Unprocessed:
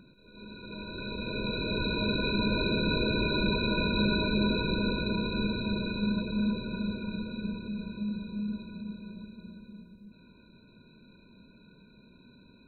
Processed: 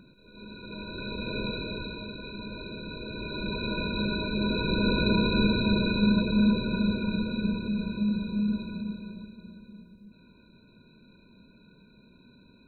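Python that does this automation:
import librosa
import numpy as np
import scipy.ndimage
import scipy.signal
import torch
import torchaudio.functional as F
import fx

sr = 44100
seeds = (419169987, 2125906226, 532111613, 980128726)

y = fx.gain(x, sr, db=fx.line((1.41, 1.5), (2.12, -11.0), (2.99, -11.0), (3.67, -2.5), (4.31, -2.5), (5.06, 6.5), (8.72, 6.5), (9.38, 0.0)))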